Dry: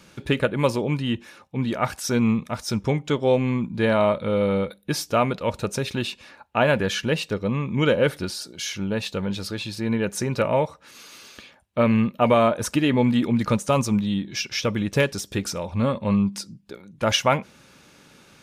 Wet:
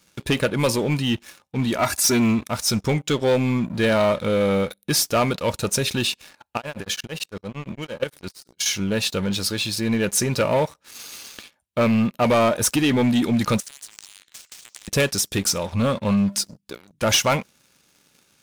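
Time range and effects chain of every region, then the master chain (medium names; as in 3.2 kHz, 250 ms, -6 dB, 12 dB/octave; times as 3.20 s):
1.78–2.45 s: high-pass 45 Hz + band-stop 3.1 kHz, Q 5.1 + comb 3 ms, depth 89%
6.57–8.66 s: level held to a coarse grid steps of 16 dB + tremolo of two beating tones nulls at 8.8 Hz
13.60–14.88 s: Chebyshev band-pass 1.8–6.8 kHz, order 3 + compression, threshold -38 dBFS + spectrum-flattening compressor 10:1
whole clip: treble shelf 4.1 kHz +12 dB; waveshaping leveller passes 3; trim -8.5 dB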